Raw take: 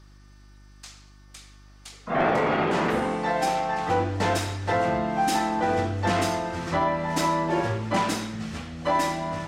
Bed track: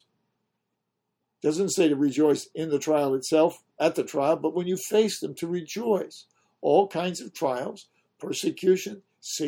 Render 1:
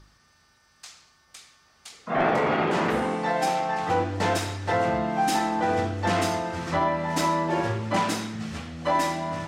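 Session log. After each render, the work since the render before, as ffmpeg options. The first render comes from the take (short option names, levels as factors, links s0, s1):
-af "bandreject=f=50:t=h:w=4,bandreject=f=100:t=h:w=4,bandreject=f=150:t=h:w=4,bandreject=f=200:t=h:w=4,bandreject=f=250:t=h:w=4,bandreject=f=300:t=h:w=4,bandreject=f=350:t=h:w=4,bandreject=f=400:t=h:w=4,bandreject=f=450:t=h:w=4,bandreject=f=500:t=h:w=4,bandreject=f=550:t=h:w=4"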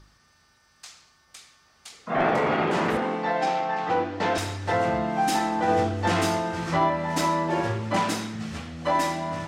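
-filter_complex "[0:a]asettb=1/sr,asplit=3[s0][s1][s2];[s0]atrim=end=2.974[s3];[s1]atrim=start=2.97:end=4.38,asetpts=PTS-STARTPTS,afade=t=in:d=0.004:c=qsin,afade=t=out:st=1.406:d=0.004:c=qsin,highpass=170,lowpass=4600[s4];[s2]atrim=start=4.376[s5];[s3][s4]acrossfade=d=0.004:c1=hsin:c2=qsin[s6];[s6][s5]acrossfade=d=0.004:c1=qsin:c2=hsin,asettb=1/sr,asplit=3[s7][s8][s9];[s7]atrim=end=5.664[s10];[s8]atrim=start=5.66:end=6.9,asetpts=PTS-STARTPTS,afade=t=in:d=0.004:c=qsin,afade=t=out:st=1.236:d=0.004:c=qsin,asplit=2[s11][s12];[s12]adelay=18,volume=0.562[s13];[s11][s13]amix=inputs=2:normalize=0,atrim=end_sample=54684[s14];[s9]atrim=start=6.896[s15];[s10][s14]acrossfade=d=0.004:c1=hsin:c2=qsin[s16];[s16][s15]acrossfade=d=0.004:c1=qsin:c2=hsin"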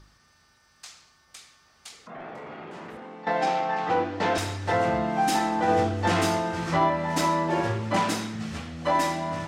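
-filter_complex "[0:a]asettb=1/sr,asplit=3[s0][s1][s2];[s0]atrim=end=1.954[s3];[s1]atrim=start=1.95:end=3.27,asetpts=PTS-STARTPTS,afade=t=in:d=0.004:c=qsin,afade=t=out:st=1.316:d=0.004:c=qsin,acompressor=threshold=0.00501:ratio=2.5:attack=3.2:release=140:knee=1:detection=peak[s4];[s2]atrim=start=3.266[s5];[s3][s4]acrossfade=d=0.004:c1=hsin:c2=qsin[s6];[s6][s5]acrossfade=d=0.004:c1=qsin:c2=hsin"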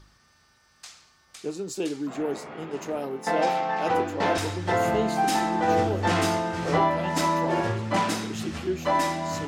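-filter_complex "[1:a]volume=0.398[s0];[0:a][s0]amix=inputs=2:normalize=0"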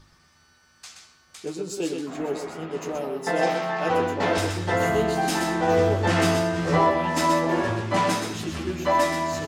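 -filter_complex "[0:a]asplit=2[s0][s1];[s1]adelay=12,volume=0.501[s2];[s0][s2]amix=inputs=2:normalize=0,asplit=2[s3][s4];[s4]aecho=0:1:126:0.501[s5];[s3][s5]amix=inputs=2:normalize=0"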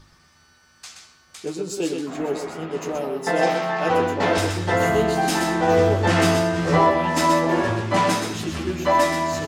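-af "volume=1.41"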